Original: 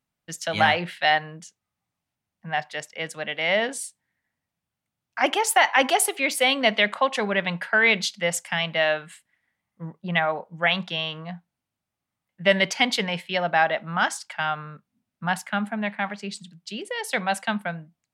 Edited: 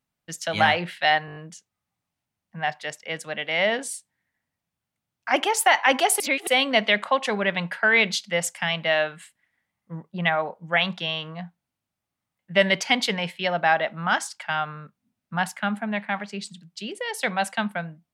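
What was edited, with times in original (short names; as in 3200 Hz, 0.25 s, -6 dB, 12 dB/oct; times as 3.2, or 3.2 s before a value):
1.26 stutter 0.02 s, 6 plays
6.1–6.37 reverse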